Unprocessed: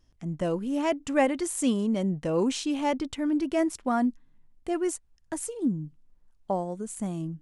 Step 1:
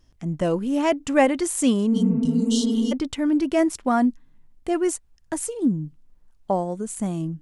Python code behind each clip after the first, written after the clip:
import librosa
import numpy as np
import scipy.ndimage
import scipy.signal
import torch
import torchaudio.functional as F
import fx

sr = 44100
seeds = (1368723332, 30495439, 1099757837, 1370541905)

y = fx.spec_repair(x, sr, seeds[0], start_s=1.94, length_s=0.96, low_hz=220.0, high_hz=2800.0, source='before')
y = y * librosa.db_to_amplitude(5.5)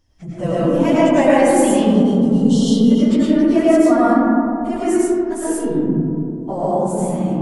y = fx.phase_scramble(x, sr, seeds[1], window_ms=50)
y = fx.rev_freeverb(y, sr, rt60_s=2.8, hf_ratio=0.25, predelay_ms=65, drr_db=-8.5)
y = y * librosa.db_to_amplitude(-3.0)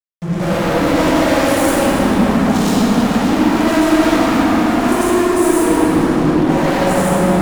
y = fx.fuzz(x, sr, gain_db=32.0, gate_db=-39.0)
y = fx.power_curve(y, sr, exponent=0.7)
y = fx.rev_plate(y, sr, seeds[2], rt60_s=3.3, hf_ratio=0.5, predelay_ms=0, drr_db=-5.5)
y = y * librosa.db_to_amplitude(-7.5)